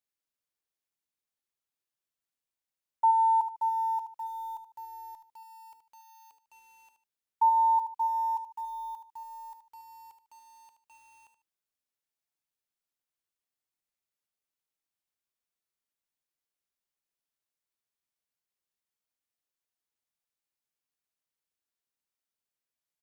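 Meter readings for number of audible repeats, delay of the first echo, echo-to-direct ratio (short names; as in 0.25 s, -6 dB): 2, 75 ms, -9.0 dB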